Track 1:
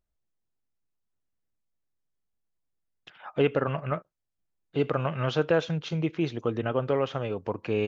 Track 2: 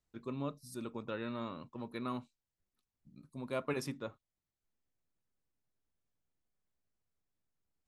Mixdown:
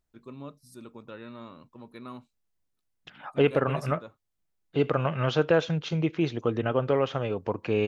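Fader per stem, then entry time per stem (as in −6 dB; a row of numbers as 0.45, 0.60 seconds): +1.5, −3.0 decibels; 0.00, 0.00 seconds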